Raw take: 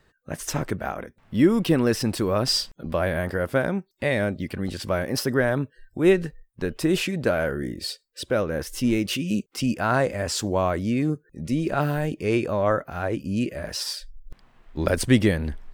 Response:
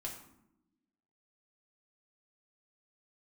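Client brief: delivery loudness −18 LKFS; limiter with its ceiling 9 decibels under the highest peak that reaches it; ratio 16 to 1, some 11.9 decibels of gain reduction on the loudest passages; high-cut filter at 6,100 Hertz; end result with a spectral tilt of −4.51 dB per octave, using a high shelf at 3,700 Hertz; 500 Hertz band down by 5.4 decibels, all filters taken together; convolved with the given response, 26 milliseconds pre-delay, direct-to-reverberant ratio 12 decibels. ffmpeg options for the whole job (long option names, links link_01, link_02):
-filter_complex "[0:a]lowpass=6100,equalizer=frequency=500:width_type=o:gain=-7.5,highshelf=frequency=3700:gain=9,acompressor=threshold=-26dB:ratio=16,alimiter=limit=-24dB:level=0:latency=1,asplit=2[link_01][link_02];[1:a]atrim=start_sample=2205,adelay=26[link_03];[link_02][link_03]afir=irnorm=-1:irlink=0,volume=-10.5dB[link_04];[link_01][link_04]amix=inputs=2:normalize=0,volume=16dB"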